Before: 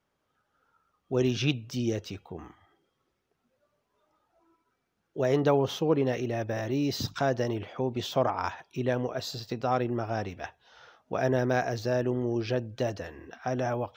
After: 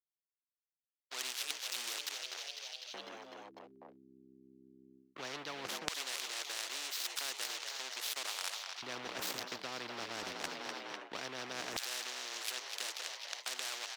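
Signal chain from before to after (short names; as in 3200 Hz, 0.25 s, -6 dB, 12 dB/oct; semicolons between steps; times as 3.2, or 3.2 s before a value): downsampling 32000 Hz; backlash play -31.5 dBFS; on a send: frequency-shifting echo 0.25 s, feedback 57%, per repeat +66 Hz, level -14 dB; on the sum: LFO high-pass square 0.17 Hz 250–3900 Hz; reverse; compressor 12:1, threshold -36 dBFS, peak gain reduction 21 dB; reverse; three-band isolator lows -22 dB, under 390 Hz, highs -13 dB, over 5200 Hz; spectral compressor 4:1; gain +9 dB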